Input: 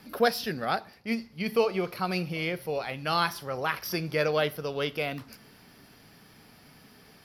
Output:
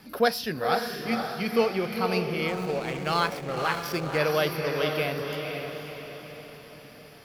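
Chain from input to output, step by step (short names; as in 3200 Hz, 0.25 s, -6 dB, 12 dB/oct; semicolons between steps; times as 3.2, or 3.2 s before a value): diffused feedback echo 0.518 s, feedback 49%, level -4.5 dB; 2.48–4.18 backlash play -31.5 dBFS; gain +1 dB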